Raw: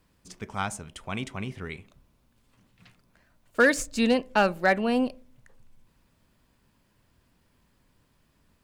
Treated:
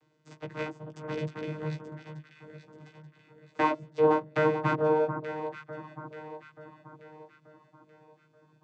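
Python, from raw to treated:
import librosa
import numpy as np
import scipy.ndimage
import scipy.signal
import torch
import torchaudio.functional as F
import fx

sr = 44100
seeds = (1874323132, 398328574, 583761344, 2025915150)

y = fx.dereverb_blind(x, sr, rt60_s=0.9)
y = fx.env_lowpass_down(y, sr, base_hz=790.0, full_db=-23.5)
y = np.abs(y)
y = fx.vocoder(y, sr, bands=16, carrier='saw', carrier_hz=154.0)
y = fx.doubler(y, sr, ms=15.0, db=-3.5)
y = fx.echo_alternate(y, sr, ms=441, hz=1400.0, feedback_pct=65, wet_db=-7)
y = y * librosa.db_to_amplitude(4.0)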